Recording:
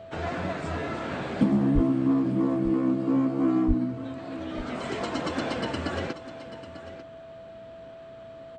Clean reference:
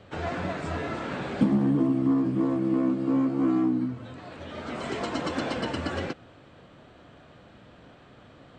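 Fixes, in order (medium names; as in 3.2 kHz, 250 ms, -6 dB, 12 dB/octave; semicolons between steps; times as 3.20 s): band-stop 660 Hz, Q 30; 1.74–1.86 s: high-pass 140 Hz 24 dB/octave; 3.67–3.79 s: high-pass 140 Hz 24 dB/octave; inverse comb 894 ms -14 dB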